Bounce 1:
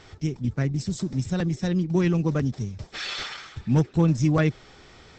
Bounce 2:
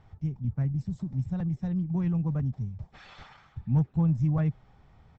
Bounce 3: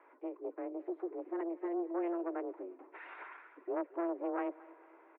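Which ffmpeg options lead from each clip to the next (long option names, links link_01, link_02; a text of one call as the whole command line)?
ffmpeg -i in.wav -af "firequalizer=gain_entry='entry(150,0);entry(350,-16);entry(810,-5);entry(1400,-14);entry(4600,-24)':delay=0.05:min_phase=1,volume=-2dB" out.wav
ffmpeg -i in.wav -af "asoftclip=type=tanh:threshold=-27dB,aecho=1:1:225|450|675|900:0.0944|0.0463|0.0227|0.0111,highpass=frequency=220:width_type=q:width=0.5412,highpass=frequency=220:width_type=q:width=1.307,lowpass=frequency=2200:width_type=q:width=0.5176,lowpass=frequency=2200:width_type=q:width=0.7071,lowpass=frequency=2200:width_type=q:width=1.932,afreqshift=170,volume=3dB" out.wav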